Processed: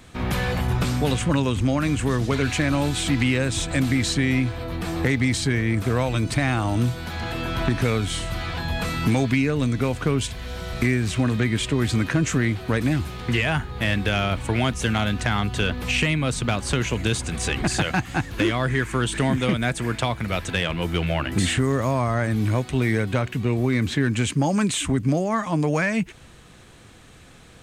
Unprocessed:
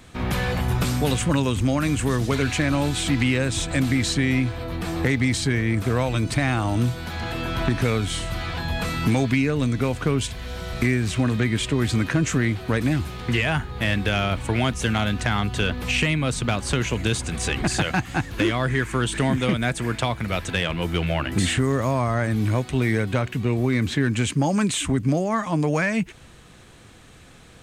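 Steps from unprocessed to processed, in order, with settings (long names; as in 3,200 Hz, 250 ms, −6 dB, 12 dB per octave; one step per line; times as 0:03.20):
0:00.67–0:02.44: high-shelf EQ 8,800 Hz −8.5 dB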